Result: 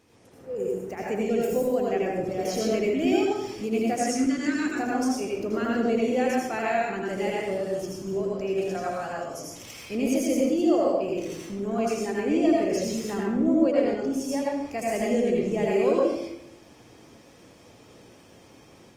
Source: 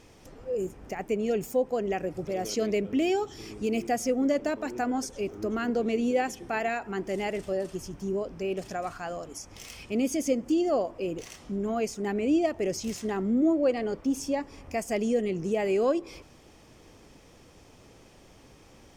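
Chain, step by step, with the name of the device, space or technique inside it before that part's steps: 3.96–4.67 s: FFT filter 350 Hz 0 dB, 600 Hz -20 dB, 1.5 kHz +7 dB, 2.4 kHz +3 dB, 7.8 kHz +7 dB, 13 kHz -7 dB; far-field microphone of a smart speaker (reverberation RT60 0.75 s, pre-delay 75 ms, DRR -3.5 dB; high-pass 100 Hz 12 dB/octave; level rider gain up to 3.5 dB; trim -5.5 dB; Opus 24 kbps 48 kHz)

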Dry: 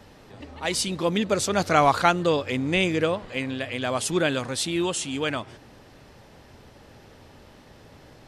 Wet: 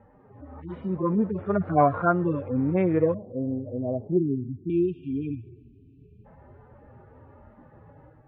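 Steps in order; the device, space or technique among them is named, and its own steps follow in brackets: harmonic-percussive separation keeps harmonic; 3.14–4.70 s: steep low-pass 670 Hz 36 dB/octave; 4.17–6.25 s: spectral selection erased 440–2300 Hz; action camera in a waterproof case (low-pass 1.5 kHz 24 dB/octave; level rider gain up to 5 dB; trim -2.5 dB; AAC 64 kbps 32 kHz)

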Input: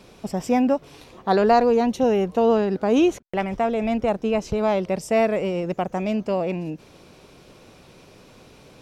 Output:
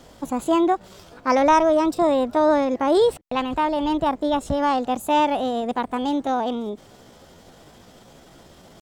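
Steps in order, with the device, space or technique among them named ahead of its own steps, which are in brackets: bass shelf 120 Hz +4 dB; chipmunk voice (pitch shift +5 st)

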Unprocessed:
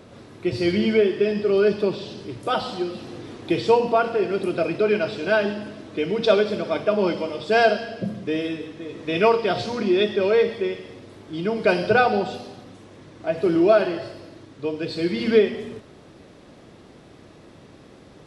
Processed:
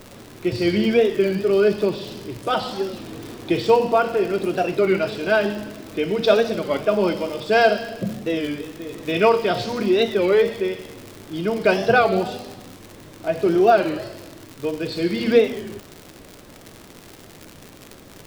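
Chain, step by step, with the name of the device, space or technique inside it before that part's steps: warped LP (warped record 33 1/3 rpm, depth 160 cents; crackle 120 per s -29 dBFS; pink noise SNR 30 dB); trim +1.5 dB

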